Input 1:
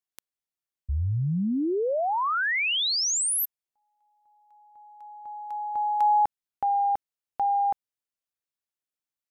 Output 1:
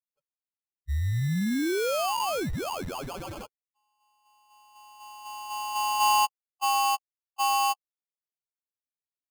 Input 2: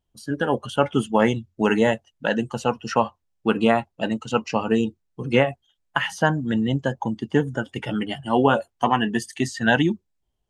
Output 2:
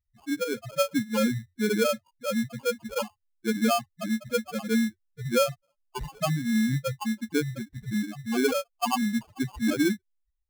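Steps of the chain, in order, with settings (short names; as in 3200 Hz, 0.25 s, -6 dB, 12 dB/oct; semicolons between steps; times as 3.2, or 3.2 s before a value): loudest bins only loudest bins 2; sample-rate reducer 1900 Hz, jitter 0%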